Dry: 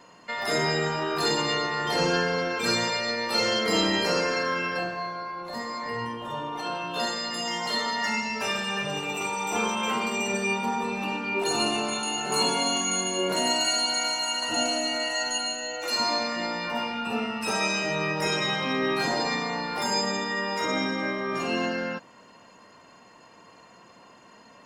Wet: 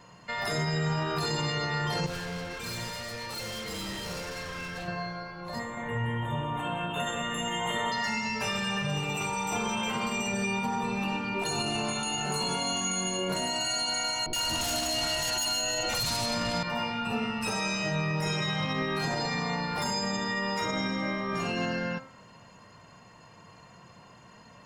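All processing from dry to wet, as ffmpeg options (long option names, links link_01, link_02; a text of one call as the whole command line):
ffmpeg -i in.wav -filter_complex "[0:a]asettb=1/sr,asplit=3[link_01][link_02][link_03];[link_01]atrim=end=2.064[link_04];[link_02]atrim=start=2.06:end=4.88,asetpts=PTS-STARTPTS,afade=type=in:duration=0.004:curve=qsin,afade=type=out:start_time=2.816:duration=0.004:curve=qsin,highshelf=frequency=8800:gain=4,flanger=delay=0.7:depth=4.7:regen=70:speed=1.7:shape=triangular,volume=34dB,asoftclip=hard,volume=-34dB[link_05];[link_03]atrim=start=4.876[link_06];[link_04][link_05]acrossfade=duration=0.004:curve1=hsin:curve2=qsin[link_07];[link_07][link_06]acrossfade=duration=0.004:curve1=qsin:curve2=hsin,asettb=1/sr,asplit=3[link_08][link_09][link_10];[link_08]atrim=end=5.594[link_11];[link_09]atrim=start=5.59:end=7.92,asetpts=PTS-STARTPTS,afade=type=in:duration=0.004:curve=qsin,afade=type=out:start_time=2.326:duration=0.004:curve=qsin,asuperstop=centerf=5000:order=12:qfactor=1.8,asplit=2[link_12][link_13];[link_13]adelay=181,lowpass=frequency=5000:poles=1,volume=-5dB,asplit=2[link_14][link_15];[link_15]adelay=181,lowpass=frequency=5000:poles=1,volume=0.46,asplit=2[link_16][link_17];[link_17]adelay=181,lowpass=frequency=5000:poles=1,volume=0.46,asplit=2[link_18][link_19];[link_19]adelay=181,lowpass=frequency=5000:poles=1,volume=0.46,asplit=2[link_20][link_21];[link_21]adelay=181,lowpass=frequency=5000:poles=1,volume=0.46,asplit=2[link_22][link_23];[link_23]adelay=181,lowpass=frequency=5000:poles=1,volume=0.46[link_24];[link_12][link_14][link_16][link_18][link_20][link_22][link_24]amix=inputs=7:normalize=0,atrim=end_sample=102753[link_25];[link_10]atrim=start=7.916[link_26];[link_11][link_25]acrossfade=duration=0.004:curve1=hsin:curve2=qsin[link_27];[link_27][link_26]acrossfade=duration=0.004:curve1=qsin:curve2=hsin,asettb=1/sr,asplit=3[link_28][link_29][link_30];[link_28]atrim=end=14.264[link_31];[link_29]atrim=start=14.26:end=16.63,asetpts=PTS-STARTPTS,afade=type=in:duration=0.004:curve=qsin,afade=type=out:start_time=2.366:duration=0.004:curve=qsin,bandreject=frequency=50:width_type=h:width=6,bandreject=frequency=100:width_type=h:width=6,bandreject=frequency=150:width_type=h:width=6,bandreject=frequency=200:width_type=h:width=6,bandreject=frequency=250:width_type=h:width=6,bandreject=frequency=300:width_type=h:width=6,bandreject=frequency=350:width_type=h:width=6,aeval=exprs='0.2*sin(PI/2*3.16*val(0)/0.2)':channel_layout=same,acrossover=split=560|1700[link_32][link_33][link_34];[link_34]adelay=70[link_35];[link_33]adelay=100[link_36];[link_32][link_36][link_35]amix=inputs=3:normalize=0,atrim=end_sample=104517[link_37];[link_30]atrim=start=16.626[link_38];[link_31][link_37]acrossfade=duration=0.004:curve1=hsin:curve2=qsin[link_39];[link_39][link_38]acrossfade=duration=0.004:curve1=qsin:curve2=hsin,lowshelf=frequency=190:width_type=q:width=1.5:gain=10,bandreject=frequency=132.4:width_type=h:width=4,bandreject=frequency=264.8:width_type=h:width=4,bandreject=frequency=397.2:width_type=h:width=4,bandreject=frequency=529.6:width_type=h:width=4,bandreject=frequency=662:width_type=h:width=4,bandreject=frequency=794.4:width_type=h:width=4,bandreject=frequency=926.8:width_type=h:width=4,bandreject=frequency=1059.2:width_type=h:width=4,bandreject=frequency=1191.6:width_type=h:width=4,bandreject=frequency=1324:width_type=h:width=4,bandreject=frequency=1456.4:width_type=h:width=4,bandreject=frequency=1588.8:width_type=h:width=4,bandreject=frequency=1721.2:width_type=h:width=4,bandreject=frequency=1853.6:width_type=h:width=4,bandreject=frequency=1986:width_type=h:width=4,bandreject=frequency=2118.4:width_type=h:width=4,bandreject=frequency=2250.8:width_type=h:width=4,bandreject=frequency=2383.2:width_type=h:width=4,bandreject=frequency=2515.6:width_type=h:width=4,bandreject=frequency=2648:width_type=h:width=4,bandreject=frequency=2780.4:width_type=h:width=4,bandreject=frequency=2912.8:width_type=h:width=4,bandreject=frequency=3045.2:width_type=h:width=4,bandreject=frequency=3177.6:width_type=h:width=4,bandreject=frequency=3310:width_type=h:width=4,bandreject=frequency=3442.4:width_type=h:width=4,bandreject=frequency=3574.8:width_type=h:width=4,bandreject=frequency=3707.2:width_type=h:width=4,bandreject=frequency=3839.6:width_type=h:width=4,bandreject=frequency=3972:width_type=h:width=4,bandreject=frequency=4104.4:width_type=h:width=4,bandreject=frequency=4236.8:width_type=h:width=4,bandreject=frequency=4369.2:width_type=h:width=4,bandreject=frequency=4501.6:width_type=h:width=4,bandreject=frequency=4634:width_type=h:width=4,bandreject=frequency=4766.4:width_type=h:width=4,bandreject=frequency=4898.8:width_type=h:width=4,bandreject=frequency=5031.2:width_type=h:width=4,bandreject=frequency=5163.6:width_type=h:width=4,bandreject=frequency=5296:width_type=h:width=4,alimiter=limit=-20dB:level=0:latency=1:release=60,volume=-1dB" out.wav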